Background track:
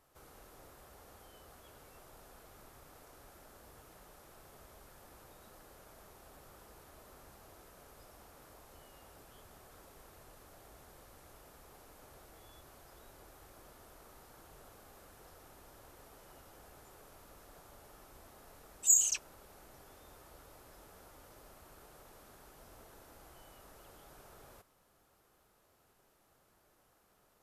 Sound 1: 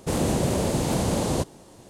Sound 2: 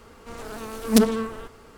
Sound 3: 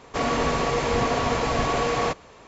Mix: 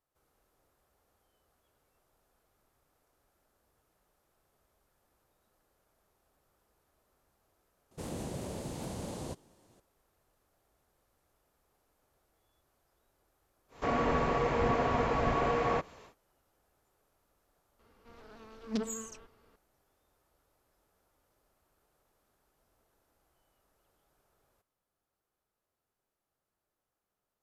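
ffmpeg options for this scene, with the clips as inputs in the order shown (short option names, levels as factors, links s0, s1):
-filter_complex "[0:a]volume=0.133[s0];[3:a]acrossover=split=2500[s1][s2];[s2]acompressor=threshold=0.00355:ratio=4:attack=1:release=60[s3];[s1][s3]amix=inputs=2:normalize=0[s4];[2:a]lowpass=f=5400:w=0.5412,lowpass=f=5400:w=1.3066[s5];[1:a]atrim=end=1.89,asetpts=PTS-STARTPTS,volume=0.158,afade=t=in:d=0.004:c=hsin,afade=t=out:st=1.886:d=0.004:c=hsin,adelay=7910[s6];[s4]atrim=end=2.47,asetpts=PTS-STARTPTS,volume=0.531,afade=t=in:d=0.1,afade=t=out:st=2.37:d=0.1,adelay=13680[s7];[s5]atrim=end=1.77,asetpts=PTS-STARTPTS,volume=0.141,afade=t=in:d=0.004:c=hsin,afade=t=out:st=1.766:d=0.004:c=hsin,adelay=17790[s8];[s0][s6][s7][s8]amix=inputs=4:normalize=0"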